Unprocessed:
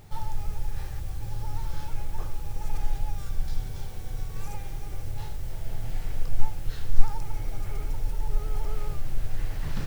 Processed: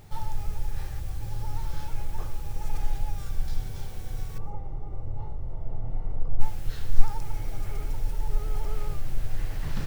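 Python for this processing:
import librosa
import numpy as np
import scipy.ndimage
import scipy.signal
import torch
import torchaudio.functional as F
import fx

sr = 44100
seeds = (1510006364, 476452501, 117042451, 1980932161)

y = fx.savgol(x, sr, points=65, at=(4.38, 6.41))
y = y + 10.0 ** (-19.5 / 20.0) * np.pad(y, (int(122 * sr / 1000.0), 0))[:len(y)]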